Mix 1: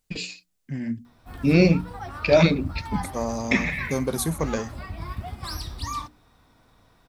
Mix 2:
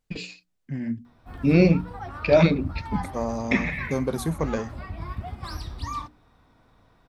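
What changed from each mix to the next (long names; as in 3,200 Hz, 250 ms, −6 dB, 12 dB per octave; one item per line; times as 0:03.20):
master: add high-shelf EQ 4,300 Hz −11.5 dB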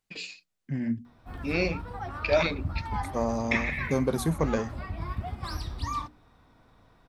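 first voice: add high-pass filter 1,100 Hz 6 dB per octave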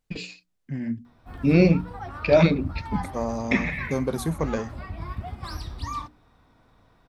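first voice: remove high-pass filter 1,100 Hz 6 dB per octave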